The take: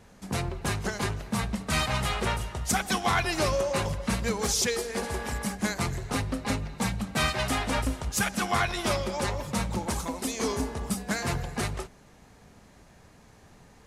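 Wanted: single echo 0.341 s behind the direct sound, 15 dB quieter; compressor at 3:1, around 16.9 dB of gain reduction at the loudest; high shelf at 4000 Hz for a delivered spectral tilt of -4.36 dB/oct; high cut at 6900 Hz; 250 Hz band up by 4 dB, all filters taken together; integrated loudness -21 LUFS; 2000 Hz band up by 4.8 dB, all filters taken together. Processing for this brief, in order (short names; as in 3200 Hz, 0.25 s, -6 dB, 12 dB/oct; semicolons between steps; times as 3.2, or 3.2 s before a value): LPF 6900 Hz; bell 250 Hz +5 dB; bell 2000 Hz +8 dB; high shelf 4000 Hz -9 dB; compressor 3:1, threshold -44 dBFS; echo 0.341 s -15 dB; gain +21.5 dB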